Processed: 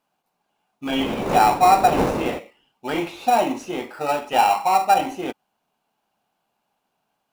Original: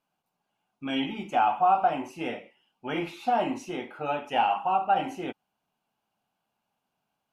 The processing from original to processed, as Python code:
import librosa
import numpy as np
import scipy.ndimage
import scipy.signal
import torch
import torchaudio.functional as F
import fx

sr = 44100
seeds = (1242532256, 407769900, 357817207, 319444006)

p1 = fx.dmg_wind(x, sr, seeds[0], corner_hz=520.0, level_db=-27.0, at=(0.86, 2.38), fade=0.02)
p2 = fx.low_shelf(p1, sr, hz=180.0, db=-11.0)
p3 = fx.sample_hold(p2, sr, seeds[1], rate_hz=3200.0, jitter_pct=0)
p4 = p2 + F.gain(torch.from_numpy(p3), -7.0).numpy()
y = F.gain(torch.from_numpy(p4), 5.5).numpy()